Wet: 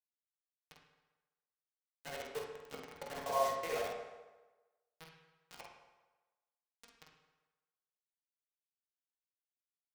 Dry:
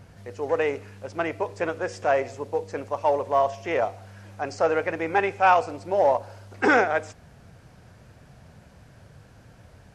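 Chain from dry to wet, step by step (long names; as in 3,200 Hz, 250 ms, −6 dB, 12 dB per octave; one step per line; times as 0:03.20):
reversed piece by piece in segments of 61 ms
source passing by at 0:02.81, 5 m/s, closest 1.3 metres
high-pass filter 66 Hz 24 dB per octave
first-order pre-emphasis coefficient 0.8
mains-hum notches 50/100/150/200/250/300 Hz
volume swells 419 ms
hollow resonant body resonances 460/690 Hz, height 7 dB, ringing for 80 ms
bit reduction 8 bits
double-tracking delay 48 ms −6 dB
convolution reverb RT60 1.2 s, pre-delay 3 ms, DRR −1.5 dB
level +4.5 dB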